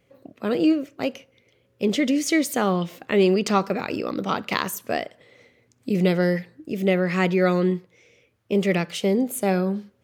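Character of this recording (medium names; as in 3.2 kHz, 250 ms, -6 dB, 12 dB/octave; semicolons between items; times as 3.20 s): noise floor -65 dBFS; spectral tilt -5.5 dB/octave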